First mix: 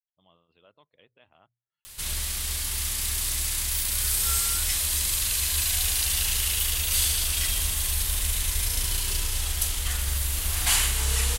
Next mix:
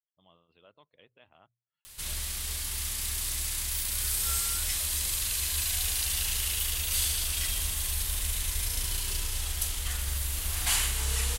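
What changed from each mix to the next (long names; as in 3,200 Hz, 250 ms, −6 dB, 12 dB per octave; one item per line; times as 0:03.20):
background −4.5 dB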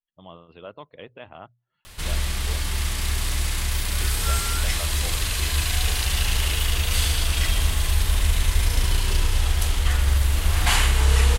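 speech +6.0 dB
master: remove first-order pre-emphasis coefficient 0.8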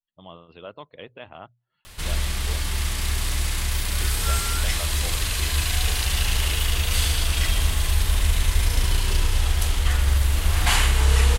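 speech: remove high-frequency loss of the air 130 metres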